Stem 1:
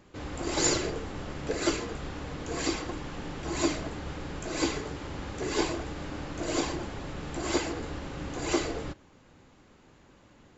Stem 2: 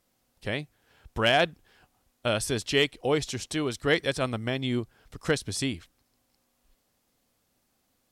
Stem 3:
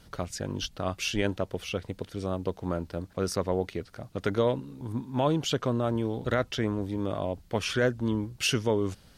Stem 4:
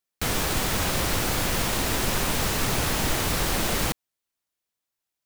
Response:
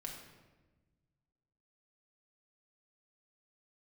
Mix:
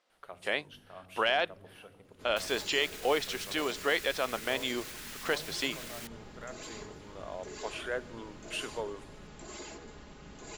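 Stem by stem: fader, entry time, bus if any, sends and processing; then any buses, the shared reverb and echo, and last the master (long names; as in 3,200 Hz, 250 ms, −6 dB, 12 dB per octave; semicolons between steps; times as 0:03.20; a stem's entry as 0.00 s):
−13.5 dB, 2.05 s, bus A, no send, high-shelf EQ 4,800 Hz +6.5 dB; comb filter 4.8 ms, depth 56%
+2.5 dB, 0.00 s, bus B, no send, no processing
−6.5 dB, 0.10 s, bus B, send −15.5 dB, high shelf with overshoot 7,300 Hz +12 dB, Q 3; automatic ducking −11 dB, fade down 0.90 s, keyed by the second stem
−8.5 dB, 2.15 s, bus A, no send, Butterworth high-pass 1,400 Hz; brickwall limiter −25.5 dBFS, peak gain reduction 8.5 dB
bus A: 0.0 dB, brickwall limiter −34.5 dBFS, peak gain reduction 12 dB
bus B: 0.0 dB, band-pass filter 520–4,100 Hz; brickwall limiter −16 dBFS, peak gain reduction 9 dB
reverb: on, RT60 1.2 s, pre-delay 4 ms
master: no processing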